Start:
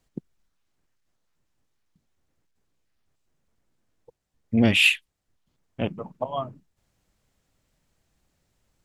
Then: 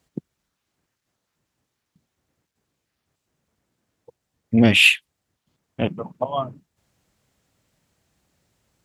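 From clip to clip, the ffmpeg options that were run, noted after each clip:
ffmpeg -i in.wav -af "highpass=71,volume=4.5dB" out.wav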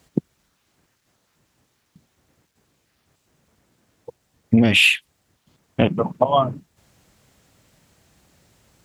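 ffmpeg -i in.wav -filter_complex "[0:a]asplit=2[link_01][link_02];[link_02]alimiter=limit=-13dB:level=0:latency=1,volume=0dB[link_03];[link_01][link_03]amix=inputs=2:normalize=0,acompressor=threshold=-16dB:ratio=6,volume=4.5dB" out.wav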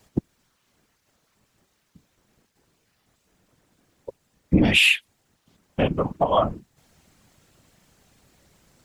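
ffmpeg -i in.wav -af "apsyclip=9.5dB,afftfilt=real='hypot(re,im)*cos(2*PI*random(0))':imag='hypot(re,im)*sin(2*PI*random(1))':win_size=512:overlap=0.75,volume=-4.5dB" out.wav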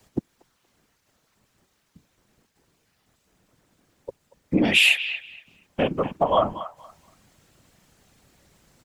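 ffmpeg -i in.wav -filter_complex "[0:a]acrossover=split=190|670|4900[link_01][link_02][link_03][link_04];[link_01]acompressor=threshold=-36dB:ratio=6[link_05];[link_03]asplit=2[link_06][link_07];[link_07]adelay=236,lowpass=frequency=3700:poles=1,volume=-10dB,asplit=2[link_08][link_09];[link_09]adelay=236,lowpass=frequency=3700:poles=1,volume=0.22,asplit=2[link_10][link_11];[link_11]adelay=236,lowpass=frequency=3700:poles=1,volume=0.22[link_12];[link_06][link_08][link_10][link_12]amix=inputs=4:normalize=0[link_13];[link_05][link_02][link_13][link_04]amix=inputs=4:normalize=0" out.wav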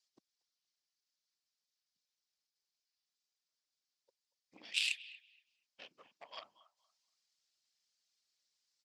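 ffmpeg -i in.wav -af "aeval=exprs='0.596*(cos(1*acos(clip(val(0)/0.596,-1,1)))-cos(1*PI/2))+0.15*(cos(3*acos(clip(val(0)/0.596,-1,1)))-cos(3*PI/2))':channel_layout=same,bandpass=frequency=4900:width_type=q:width=3:csg=0" out.wav

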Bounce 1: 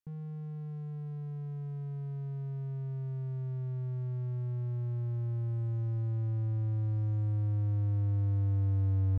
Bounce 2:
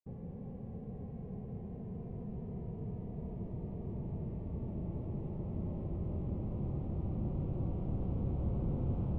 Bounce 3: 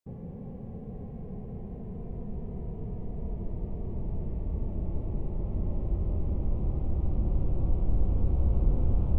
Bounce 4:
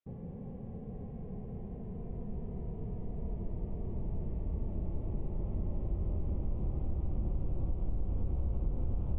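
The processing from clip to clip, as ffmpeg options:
ffmpeg -i in.wav -af "adynamicsmooth=sensitivity=6:basefreq=590,bass=frequency=250:gain=-12,treble=frequency=4000:gain=6,afftfilt=real='hypot(re,im)*cos(2*PI*random(0))':imag='hypot(re,im)*sin(2*PI*random(1))':win_size=512:overlap=0.75,volume=11.5dB" out.wav
ffmpeg -i in.wav -af "asubboost=boost=6:cutoff=53,volume=4.5dB" out.wav
ffmpeg -i in.wav -af "aresample=8000,aresample=44100,acompressor=threshold=-25dB:ratio=5,volume=-3dB" out.wav

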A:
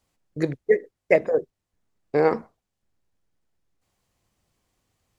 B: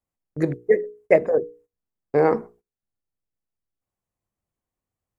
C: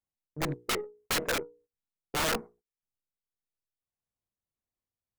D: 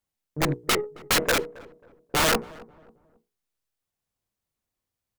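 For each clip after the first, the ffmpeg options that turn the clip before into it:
ffmpeg -i in.wav -af "bandreject=frequency=60:width_type=h:width=6,bandreject=frequency=120:width_type=h:width=6,bandreject=frequency=180:width_type=h:width=6,bandreject=frequency=240:width_type=h:width=6,bandreject=frequency=300:width_type=h:width=6,bandreject=frequency=360:width_type=h:width=6,bandreject=frequency=420:width_type=h:width=6,bandreject=frequency=480:width_type=h:width=6,agate=range=-16dB:threshold=-52dB:ratio=16:detection=peak,equalizer=frequency=4100:width_type=o:width=1.7:gain=-10.5,volume=3dB" out.wav
ffmpeg -i in.wav -af "aeval=exprs='(mod(7.08*val(0)+1,2)-1)/7.08':channel_layout=same,aeval=exprs='0.141*(cos(1*acos(clip(val(0)/0.141,-1,1)))-cos(1*PI/2))+0.00794*(cos(4*acos(clip(val(0)/0.141,-1,1)))-cos(4*PI/2))+0.00631*(cos(7*acos(clip(val(0)/0.141,-1,1)))-cos(7*PI/2))':channel_layout=same,tremolo=f=1.7:d=0.34,volume=-5.5dB" out.wav
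ffmpeg -i in.wav -filter_complex "[0:a]asplit=2[link_01][link_02];[link_02]adelay=270,lowpass=frequency=990:poles=1,volume=-19dB,asplit=2[link_03][link_04];[link_04]adelay=270,lowpass=frequency=990:poles=1,volume=0.39,asplit=2[link_05][link_06];[link_06]adelay=270,lowpass=frequency=990:poles=1,volume=0.39[link_07];[link_01][link_03][link_05][link_07]amix=inputs=4:normalize=0,volume=7.5dB" out.wav

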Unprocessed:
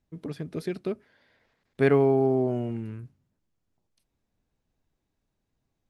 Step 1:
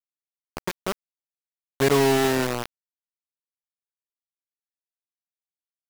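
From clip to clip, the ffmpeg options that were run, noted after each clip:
ffmpeg -i in.wav -af "equalizer=frequency=1000:width=3.1:gain=9,acrusher=bits=3:mix=0:aa=0.000001" out.wav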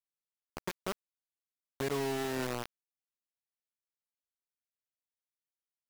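ffmpeg -i in.wav -af "alimiter=limit=-17.5dB:level=0:latency=1:release=326,volume=-8dB" out.wav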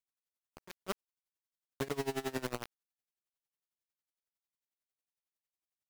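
ffmpeg -i in.wav -af "aeval=exprs='val(0)*pow(10,-22*(0.5-0.5*cos(2*PI*11*n/s))/20)':channel_layout=same,volume=2.5dB" out.wav

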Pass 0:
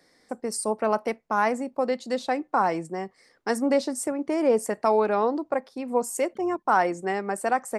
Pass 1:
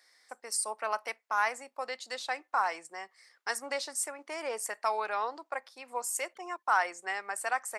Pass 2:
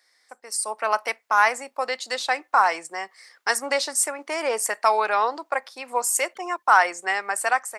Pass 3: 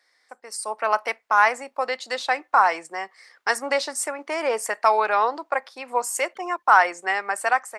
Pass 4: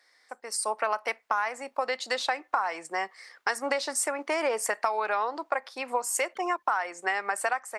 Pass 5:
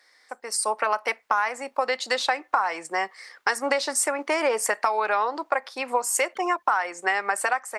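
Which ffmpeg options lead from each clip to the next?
ffmpeg -i in.wav -af "highpass=1200" out.wav
ffmpeg -i in.wav -af "dynaudnorm=framelen=470:gausssize=3:maxgain=11dB" out.wav
ffmpeg -i in.wav -af "highshelf=frequency=4900:gain=-9.5,volume=1.5dB" out.wav
ffmpeg -i in.wav -af "acompressor=threshold=-25dB:ratio=12,volume=1.5dB" out.wav
ffmpeg -i in.wav -af "bandreject=frequency=680:width=19,volume=4.5dB" out.wav

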